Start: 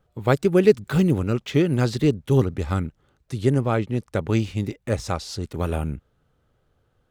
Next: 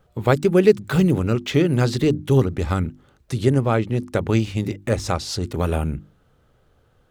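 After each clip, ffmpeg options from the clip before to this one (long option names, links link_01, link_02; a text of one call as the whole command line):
ffmpeg -i in.wav -filter_complex "[0:a]asplit=2[link_01][link_02];[link_02]acompressor=threshold=-29dB:ratio=6,volume=2.5dB[link_03];[link_01][link_03]amix=inputs=2:normalize=0,bandreject=frequency=50:width_type=h:width=6,bandreject=frequency=100:width_type=h:width=6,bandreject=frequency=150:width_type=h:width=6,bandreject=frequency=200:width_type=h:width=6,bandreject=frequency=250:width_type=h:width=6,bandreject=frequency=300:width_type=h:width=6,bandreject=frequency=350:width_type=h:width=6" out.wav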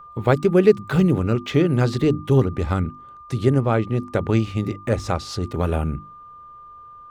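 ffmpeg -i in.wav -af "highshelf=frequency=4200:gain=-8,aeval=exprs='val(0)+0.01*sin(2*PI*1200*n/s)':channel_layout=same" out.wav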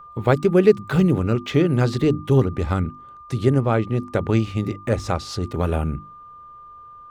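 ffmpeg -i in.wav -af anull out.wav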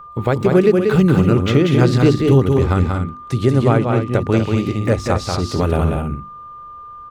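ffmpeg -i in.wav -af "alimiter=limit=-9dB:level=0:latency=1:release=360,aecho=1:1:186.6|242:0.631|0.355,volume=5dB" out.wav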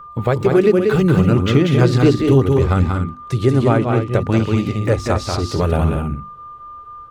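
ffmpeg -i in.wav -af "flanger=delay=0.6:depth=2.8:regen=-59:speed=0.67:shape=triangular,volume=4dB" out.wav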